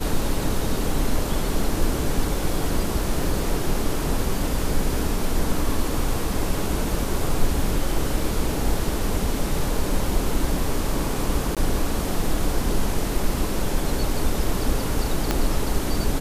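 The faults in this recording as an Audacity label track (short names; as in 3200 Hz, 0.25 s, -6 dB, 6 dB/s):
11.550000	11.570000	gap 17 ms
15.310000	15.310000	pop -6 dBFS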